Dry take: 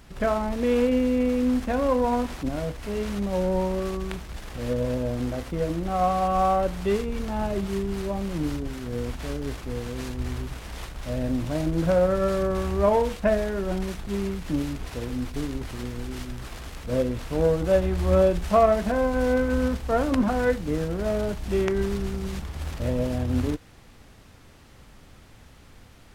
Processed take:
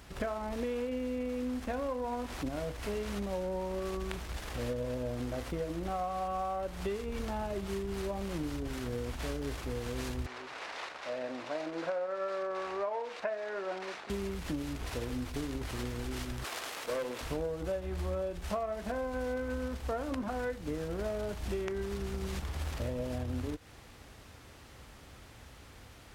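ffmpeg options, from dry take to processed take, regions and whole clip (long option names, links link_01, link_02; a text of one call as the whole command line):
ffmpeg -i in.wav -filter_complex "[0:a]asettb=1/sr,asplit=3[link_01][link_02][link_03];[link_01]atrim=end=10.264[link_04];[link_02]atrim=start=10.26:end=14.1,asetpts=PTS-STARTPTS,afade=type=in:duration=0.004:curve=qsin,afade=type=out:start_time=3.836:duration=0.004:curve=qsin,equalizer=frequency=3200:width_type=o:width=0.31:gain=-4,acompressor=mode=upward:threshold=-27dB:ratio=2.5:attack=3.2:release=140:knee=2.83:detection=peak,highpass=540,lowpass=4100[link_05];[link_03]atrim=start=14.096[link_06];[link_04][link_05]acrossfade=duration=0.004:curve1=hsin:curve2=qsin[link_07];[link_07][link_06]acrossfade=duration=0.004:curve1=qsin:curve2=hsin,asettb=1/sr,asplit=3[link_08][link_09][link_10];[link_08]atrim=end=16.444[link_11];[link_09]atrim=start=16.44:end=17.21,asetpts=PTS-STARTPTS,afade=type=in:duration=0.004:curve=qsin,afade=type=out:start_time=0.766:duration=0.004:curve=qsin,highpass=430,acontrast=84,aeval=exprs='(tanh(12.6*val(0)+0.65)-tanh(0.65))/12.6':channel_layout=same[link_12];[link_10]atrim=start=17.206[link_13];[link_11][link_12]acrossfade=duration=0.004:curve1=hsin:curve2=qsin[link_14];[link_14][link_13]acrossfade=duration=0.004:curve1=qsin:curve2=hsin,highpass=45,equalizer=frequency=180:width=1.2:gain=-5.5,acompressor=threshold=-32dB:ratio=10" out.wav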